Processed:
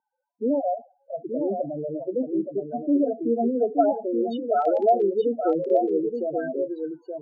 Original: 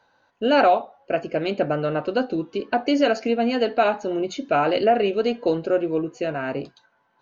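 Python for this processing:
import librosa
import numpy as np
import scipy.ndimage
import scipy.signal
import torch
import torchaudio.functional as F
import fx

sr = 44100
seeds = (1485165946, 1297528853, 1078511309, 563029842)

y = fx.spec_topn(x, sr, count=4)
y = fx.dmg_crackle(y, sr, seeds[0], per_s=18.0, level_db=-28.0, at=(4.6, 5.02), fade=0.02)
y = scipy.signal.sosfilt(scipy.signal.butter(2, 180.0, 'highpass', fs=sr, output='sos'), y)
y = fx.filter_sweep_lowpass(y, sr, from_hz=400.0, to_hz=3300.0, start_s=3.28, end_s=3.81, q=1.0)
y = y + 10.0 ** (-6.0 / 20.0) * np.pad(y, (int(876 * sr / 1000.0), 0))[:len(y)]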